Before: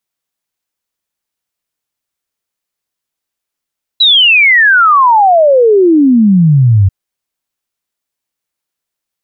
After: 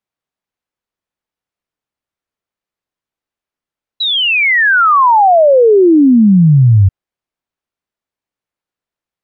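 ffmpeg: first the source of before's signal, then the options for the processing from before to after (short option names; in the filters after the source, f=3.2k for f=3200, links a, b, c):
-f lavfi -i "aevalsrc='0.668*clip(min(t,2.89-t)/0.01,0,1)*sin(2*PI*4000*2.89/log(92/4000)*(exp(log(92/4000)*t/2.89)-1))':d=2.89:s=44100"
-af "lowpass=f=1.6k:p=1"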